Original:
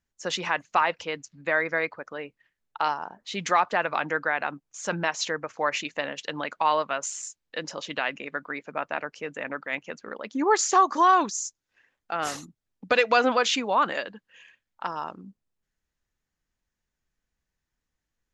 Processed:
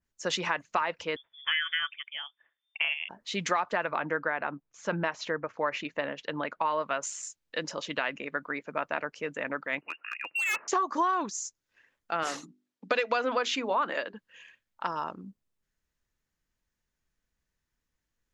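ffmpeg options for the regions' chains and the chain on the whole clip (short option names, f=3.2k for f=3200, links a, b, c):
-filter_complex "[0:a]asettb=1/sr,asplit=3[a][b][c];[a]atrim=end=1.164[d];[b]atrim=start=1.16:end=3.09,asetpts=PTS-STARTPTS,afade=t=in:d=0.004:c=qsin,afade=t=out:st=1.926:d=0.004:c=qsin,tremolo=f=160:d=0.333,lowpass=f=3.1k:t=q:w=0.5098,lowpass=f=3.1k:t=q:w=0.6013,lowpass=f=3.1k:t=q:w=0.9,lowpass=f=3.1k:t=q:w=2.563,afreqshift=-3600[e];[c]atrim=start=3.086[f];[d][e]acrossfade=d=0.004:c1=hsin:c2=qsin[g];[g][f]acrossfade=d=0.004:c1=qsin:c2=hsin,asettb=1/sr,asplit=3[h][i][j];[h]atrim=end=3.914[k];[i]atrim=start=3.91:end=6.83,asetpts=PTS-STARTPTS,afade=t=in:d=0.004:c=qsin,afade=t=out:st=2.916:d=0.004:c=qsin,lowpass=5.9k,highshelf=f=3.3k:g=-10.5[l];[j]atrim=start=6.826[m];[k][l]acrossfade=d=0.004:c1=hsin:c2=qsin[n];[n][m]acrossfade=d=0.004:c1=qsin:c2=hsin,asettb=1/sr,asplit=3[o][p][q];[o]atrim=end=9.814[r];[p]atrim=start=9.81:end=10.68,asetpts=PTS-STARTPTS,afade=t=in:d=0.004:c=qsin,afade=t=out:st=0.866:d=0.004:c=qsin,lowpass=f=2.6k:t=q:w=0.5098,lowpass=f=2.6k:t=q:w=0.6013,lowpass=f=2.6k:t=q:w=0.9,lowpass=f=2.6k:t=q:w=2.563,afreqshift=-3000,volume=25dB,asoftclip=hard,volume=-25dB,highpass=250[s];[q]atrim=start=10.676[t];[r][s]acrossfade=d=0.004:c1=hsin:c2=qsin[u];[u][t]acrossfade=d=0.004:c1=qsin:c2=hsin,asettb=1/sr,asplit=3[v][w][x];[v]atrim=end=12.234[y];[w]atrim=start=12.23:end=14.14,asetpts=PTS-STARTPTS,afade=t=in:d=0.004:c=qsin,afade=t=out:st=1.906:d=0.004:c=qsin,highpass=220,lowpass=7.7k,bandreject=f=50:t=h:w=6,bandreject=f=100:t=h:w=6,bandreject=f=150:t=h:w=6,bandreject=f=200:t=h:w=6,bandreject=f=250:t=h:w=6,bandreject=f=300:t=h:w=6,bandreject=f=350:t=h:w=6,bandreject=f=400:t=h:w=6[z];[x]atrim=start=14.136[aa];[y][z]acrossfade=d=0.004:c1=hsin:c2=qsin[ab];[ab][aa]acrossfade=d=0.004:c1=qsin:c2=hsin,acompressor=threshold=-23dB:ratio=6,bandreject=f=770:w=12,adynamicequalizer=threshold=0.00794:dfrequency=2600:dqfactor=0.7:tfrequency=2600:tqfactor=0.7:attack=5:release=100:ratio=0.375:range=2.5:mode=cutabove:tftype=highshelf"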